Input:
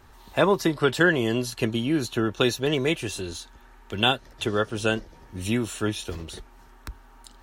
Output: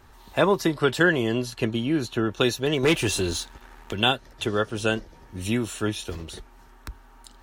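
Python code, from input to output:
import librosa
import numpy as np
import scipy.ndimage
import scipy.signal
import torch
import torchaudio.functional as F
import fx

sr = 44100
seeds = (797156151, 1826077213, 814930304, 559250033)

y = fx.high_shelf(x, sr, hz=6200.0, db=-7.0, at=(1.22, 2.3))
y = fx.leveller(y, sr, passes=2, at=(2.83, 3.93))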